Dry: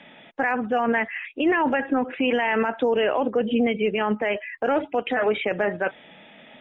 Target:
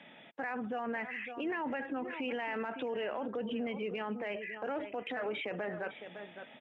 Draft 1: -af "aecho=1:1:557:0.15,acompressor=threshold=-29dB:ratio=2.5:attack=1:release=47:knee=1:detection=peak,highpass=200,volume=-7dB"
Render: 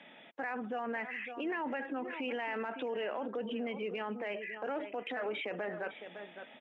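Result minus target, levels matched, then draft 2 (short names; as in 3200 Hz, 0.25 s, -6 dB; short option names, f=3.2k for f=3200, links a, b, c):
125 Hz band -3.0 dB
-af "aecho=1:1:557:0.15,acompressor=threshold=-29dB:ratio=2.5:attack=1:release=47:knee=1:detection=peak,highpass=86,volume=-7dB"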